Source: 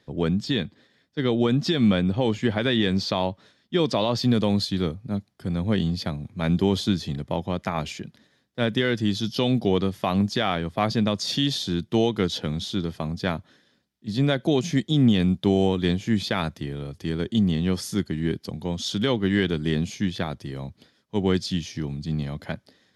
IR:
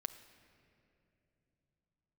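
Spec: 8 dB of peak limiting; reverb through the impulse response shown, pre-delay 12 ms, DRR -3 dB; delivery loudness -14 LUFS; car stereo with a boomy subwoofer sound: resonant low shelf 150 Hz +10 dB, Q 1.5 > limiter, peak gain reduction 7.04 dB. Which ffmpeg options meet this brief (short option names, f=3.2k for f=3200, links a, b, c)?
-filter_complex "[0:a]alimiter=limit=-16.5dB:level=0:latency=1,asplit=2[a][b];[1:a]atrim=start_sample=2205,adelay=12[c];[b][c]afir=irnorm=-1:irlink=0,volume=5dB[d];[a][d]amix=inputs=2:normalize=0,lowshelf=f=150:t=q:w=1.5:g=10,volume=7dB,alimiter=limit=-4.5dB:level=0:latency=1"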